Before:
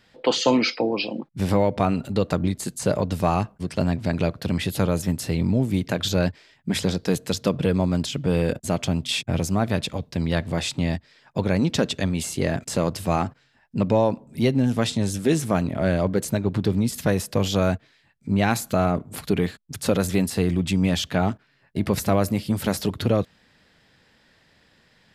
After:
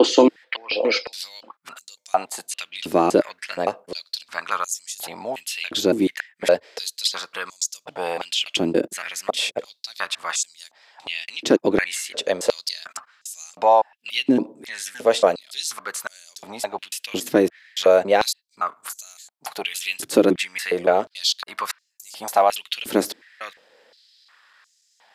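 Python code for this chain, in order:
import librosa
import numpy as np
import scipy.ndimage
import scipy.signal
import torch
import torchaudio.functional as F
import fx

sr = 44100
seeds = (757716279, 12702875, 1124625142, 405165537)

y = fx.block_reorder(x, sr, ms=282.0, group=2)
y = fx.filter_held_highpass(y, sr, hz=2.8, low_hz=330.0, high_hz=6600.0)
y = F.gain(torch.from_numpy(y), 1.5).numpy()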